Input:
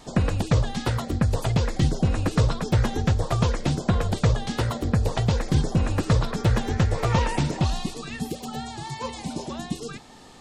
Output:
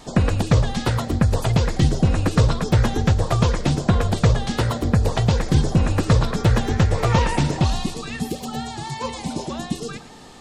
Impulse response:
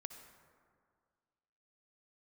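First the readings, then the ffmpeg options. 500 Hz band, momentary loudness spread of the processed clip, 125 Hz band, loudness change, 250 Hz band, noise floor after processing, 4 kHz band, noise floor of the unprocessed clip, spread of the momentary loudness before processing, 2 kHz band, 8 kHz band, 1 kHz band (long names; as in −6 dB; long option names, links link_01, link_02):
+4.0 dB, 10 LU, +4.0 dB, +4.0 dB, +4.0 dB, −36 dBFS, +4.0 dB, −41 dBFS, 10 LU, +4.0 dB, +4.0 dB, +4.0 dB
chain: -filter_complex "[0:a]asplit=2[link_01][link_02];[1:a]atrim=start_sample=2205,adelay=112[link_03];[link_02][link_03]afir=irnorm=-1:irlink=0,volume=-10.5dB[link_04];[link_01][link_04]amix=inputs=2:normalize=0,volume=4dB"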